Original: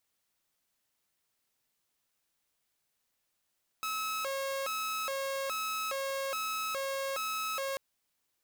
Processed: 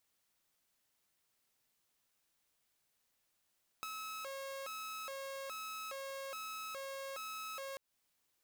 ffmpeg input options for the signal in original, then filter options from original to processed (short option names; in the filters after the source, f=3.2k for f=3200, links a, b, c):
-f lavfi -i "aevalsrc='0.0316*(2*mod((917*t+373/1.2*(0.5-abs(mod(1.2*t,1)-0.5))),1)-1)':d=3.94:s=44100"
-af "acompressor=threshold=-44dB:ratio=5"